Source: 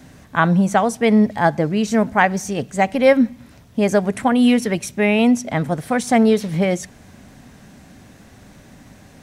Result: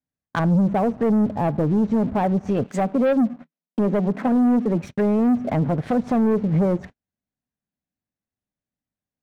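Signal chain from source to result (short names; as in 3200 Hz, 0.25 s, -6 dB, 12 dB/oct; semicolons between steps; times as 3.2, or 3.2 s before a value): treble ducked by the level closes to 570 Hz, closed at -15.5 dBFS; gate -35 dBFS, range -41 dB; 2.64–4.82 Chebyshev high-pass 160 Hz, order 6; sample leveller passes 2; limiter -11 dBFS, peak gain reduction 4.5 dB; gain -3 dB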